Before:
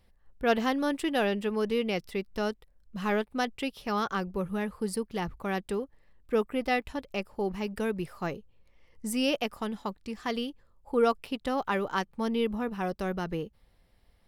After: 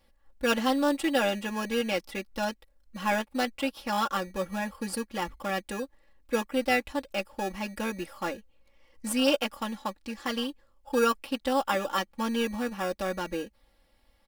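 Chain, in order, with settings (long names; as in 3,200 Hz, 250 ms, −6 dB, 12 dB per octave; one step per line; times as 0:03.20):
in parallel at −8 dB: decimation without filtering 21×
on the sum: low-shelf EQ 330 Hz −10 dB
comb filter 3.6 ms, depth 93%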